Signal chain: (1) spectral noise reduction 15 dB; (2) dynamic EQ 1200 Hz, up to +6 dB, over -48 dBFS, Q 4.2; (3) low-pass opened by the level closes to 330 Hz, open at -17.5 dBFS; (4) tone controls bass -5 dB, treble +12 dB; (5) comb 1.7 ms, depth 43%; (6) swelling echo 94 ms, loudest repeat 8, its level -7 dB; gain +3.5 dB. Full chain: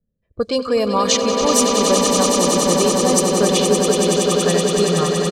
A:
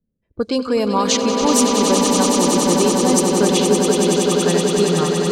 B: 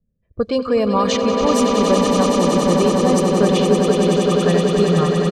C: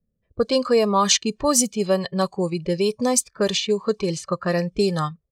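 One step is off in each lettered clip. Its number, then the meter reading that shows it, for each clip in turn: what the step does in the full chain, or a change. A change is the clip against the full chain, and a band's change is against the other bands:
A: 5, 250 Hz band +3.0 dB; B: 4, 8 kHz band -10.5 dB; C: 6, echo-to-direct 4.5 dB to none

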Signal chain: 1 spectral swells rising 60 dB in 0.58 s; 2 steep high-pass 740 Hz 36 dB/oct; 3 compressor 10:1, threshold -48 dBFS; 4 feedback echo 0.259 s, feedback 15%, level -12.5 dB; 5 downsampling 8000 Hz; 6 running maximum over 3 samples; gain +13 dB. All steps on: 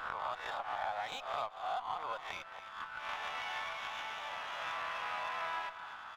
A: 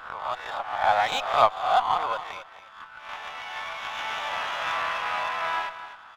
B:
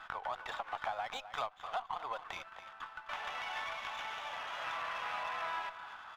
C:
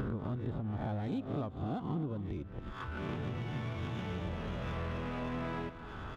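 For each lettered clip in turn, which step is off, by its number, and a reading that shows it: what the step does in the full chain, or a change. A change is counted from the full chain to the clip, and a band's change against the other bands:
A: 3, mean gain reduction 8.0 dB; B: 1, momentary loudness spread change +2 LU; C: 2, crest factor change -3.0 dB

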